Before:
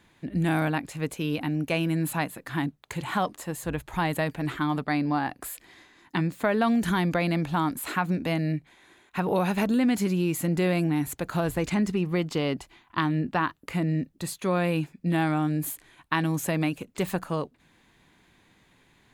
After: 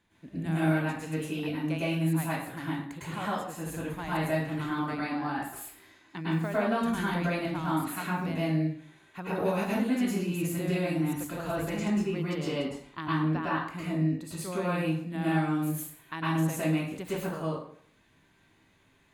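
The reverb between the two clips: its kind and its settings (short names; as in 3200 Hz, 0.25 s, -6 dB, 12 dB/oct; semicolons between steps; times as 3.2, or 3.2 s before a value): plate-style reverb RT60 0.59 s, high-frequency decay 0.75×, pre-delay 95 ms, DRR -8.5 dB; gain -12.5 dB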